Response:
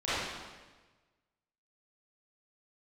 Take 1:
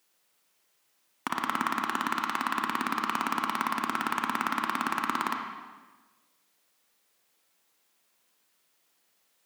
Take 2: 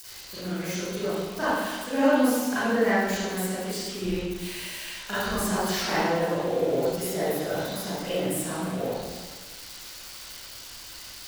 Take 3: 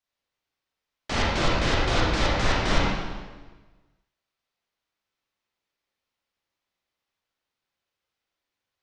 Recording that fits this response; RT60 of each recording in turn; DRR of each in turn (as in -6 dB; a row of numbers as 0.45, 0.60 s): 2; 1.3, 1.3, 1.3 s; 2.5, -14.5, -6.0 dB